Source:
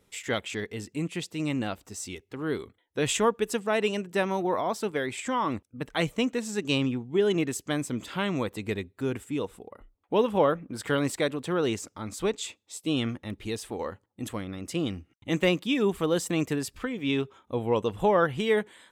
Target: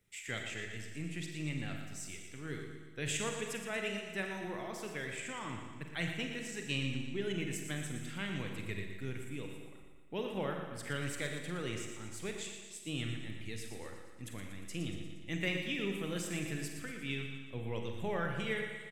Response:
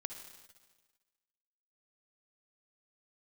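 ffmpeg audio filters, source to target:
-filter_complex "[0:a]equalizer=frequency=125:width_type=o:width=1:gain=5,equalizer=frequency=250:width_type=o:width=1:gain=-7,equalizer=frequency=500:width_type=o:width=1:gain=-6,equalizer=frequency=1000:width_type=o:width=1:gain=-11,equalizer=frequency=2000:width_type=o:width=1:gain=5,equalizer=frequency=4000:width_type=o:width=1:gain=-4,acrossover=split=110|5000[link_01][link_02][link_03];[link_01]aeval=exprs='max(val(0),0)':channel_layout=same[link_04];[link_04][link_02][link_03]amix=inputs=3:normalize=0,aecho=1:1:118|236|354|472|590|708|826:0.355|0.206|0.119|0.0692|0.0402|0.0233|0.0135[link_05];[1:a]atrim=start_sample=2205,asetrate=61740,aresample=44100[link_06];[link_05][link_06]afir=irnorm=-1:irlink=0,volume=-1.5dB" -ar 44100 -c:a nellymoser

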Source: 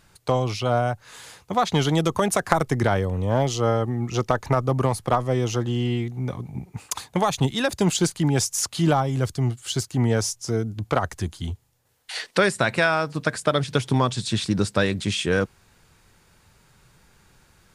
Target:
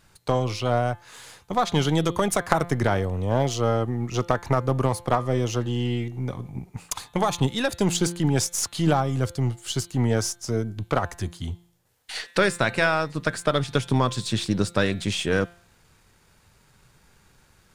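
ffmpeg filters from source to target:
ffmpeg -i in.wav -af "aeval=exprs='if(lt(val(0),0),0.708*val(0),val(0))':channel_layout=same,bandreject=frequency=173:width_type=h:width=4,bandreject=frequency=346:width_type=h:width=4,bandreject=frequency=519:width_type=h:width=4,bandreject=frequency=692:width_type=h:width=4,bandreject=frequency=865:width_type=h:width=4,bandreject=frequency=1038:width_type=h:width=4,bandreject=frequency=1211:width_type=h:width=4,bandreject=frequency=1384:width_type=h:width=4,bandreject=frequency=1557:width_type=h:width=4,bandreject=frequency=1730:width_type=h:width=4,bandreject=frequency=1903:width_type=h:width=4,bandreject=frequency=2076:width_type=h:width=4,bandreject=frequency=2249:width_type=h:width=4,bandreject=frequency=2422:width_type=h:width=4,bandreject=frequency=2595:width_type=h:width=4,bandreject=frequency=2768:width_type=h:width=4,bandreject=frequency=2941:width_type=h:width=4,bandreject=frequency=3114:width_type=h:width=4,bandreject=frequency=3287:width_type=h:width=4,bandreject=frequency=3460:width_type=h:width=4,bandreject=frequency=3633:width_type=h:width=4,bandreject=frequency=3806:width_type=h:width=4,bandreject=frequency=3979:width_type=h:width=4,bandreject=frequency=4152:width_type=h:width=4,bandreject=frequency=4325:width_type=h:width=4" out.wav

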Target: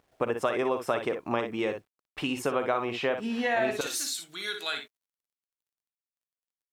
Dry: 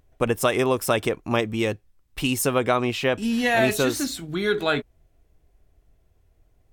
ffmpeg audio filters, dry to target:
ffmpeg -i in.wav -af "asetnsamples=nb_out_samples=441:pad=0,asendcmd='3.81 bandpass f 7200',bandpass=frequency=850:width_type=q:width=0.54:csg=0,aecho=1:1:42|59:0.178|0.355,acompressor=threshold=-30dB:ratio=2,acrusher=bits=11:mix=0:aa=0.000001,volume=1.5dB" out.wav

